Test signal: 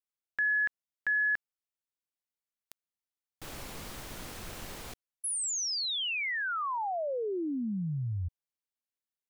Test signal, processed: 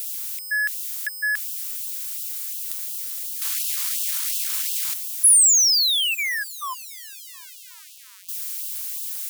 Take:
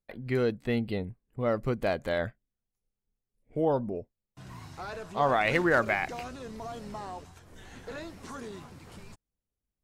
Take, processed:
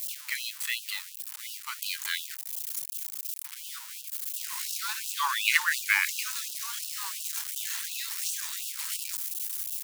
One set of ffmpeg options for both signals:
-af "aeval=exprs='val(0)+0.5*0.0106*sgn(val(0))':c=same,crystalizer=i=7.5:c=0,afftfilt=real='re*gte(b*sr/1024,810*pow(2600/810,0.5+0.5*sin(2*PI*2.8*pts/sr)))':imag='im*gte(b*sr/1024,810*pow(2600/810,0.5+0.5*sin(2*PI*2.8*pts/sr)))':win_size=1024:overlap=0.75,volume=-2dB"

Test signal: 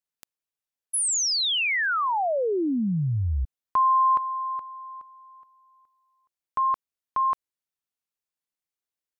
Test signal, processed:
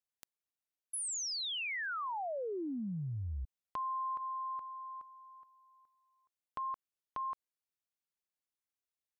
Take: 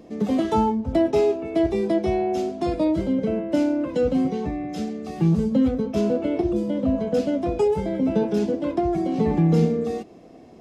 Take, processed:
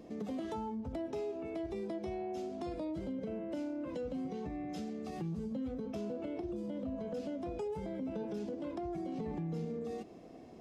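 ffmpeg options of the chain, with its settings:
-af "acompressor=threshold=-32dB:ratio=4:attack=3.6:release=74:detection=rms,volume=-6dB"

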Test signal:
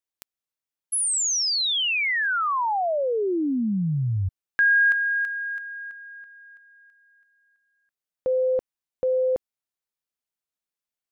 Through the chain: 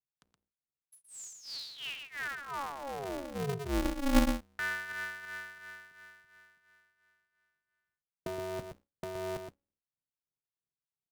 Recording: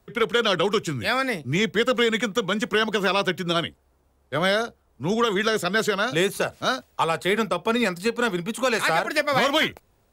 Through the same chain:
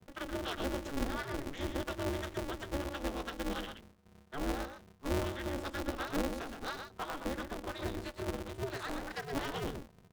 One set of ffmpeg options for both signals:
-filter_complex "[0:a]lowpass=f=11k:w=0.5412,lowpass=f=11k:w=1.3066,aemphasis=mode=reproduction:type=riaa,bandreject=f=60:t=h:w=6,bandreject=f=120:t=h:w=6,bandreject=f=180:t=h:w=6,bandreject=f=240:t=h:w=6,bandreject=f=300:t=h:w=6,bandreject=f=360:t=h:w=6,bandreject=f=420:t=h:w=6,adynamicequalizer=threshold=0.0178:dfrequency=160:dqfactor=3.7:tfrequency=160:tqfactor=3.7:attack=5:release=100:ratio=0.375:range=3:mode=cutabove:tftype=bell,acrossover=split=210|3000[a][b][c];[b]acompressor=threshold=-26dB:ratio=2:attack=4.6:release=653:knee=2.83:detection=peak[d];[a][d][c]amix=inputs=3:normalize=0,acrossover=split=570[e][f];[e]aeval=exprs='val(0)*(1-1/2+1/2*cos(2*PI*2.9*n/s))':c=same[g];[f]aeval=exprs='val(0)*(1-1/2-1/2*cos(2*PI*2.9*n/s))':c=same[h];[g][h]amix=inputs=2:normalize=0,asuperstop=centerf=2300:order=4:qfactor=3.7,asplit=2[i][j];[j]aecho=0:1:121:0.473[k];[i][k]amix=inputs=2:normalize=0,aeval=exprs='val(0)*sgn(sin(2*PI*140*n/s))':c=same,volume=-9dB"

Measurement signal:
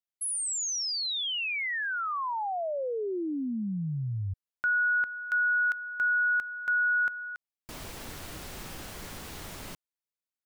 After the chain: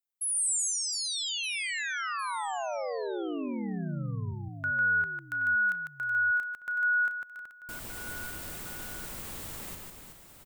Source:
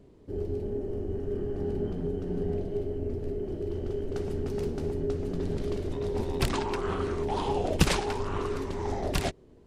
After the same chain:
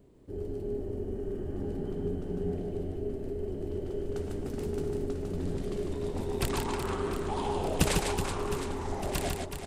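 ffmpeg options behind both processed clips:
-af "aexciter=amount=2.1:drive=5.1:freq=7.4k,aecho=1:1:150|375|712.5|1219|1978:0.631|0.398|0.251|0.158|0.1,volume=-4dB"

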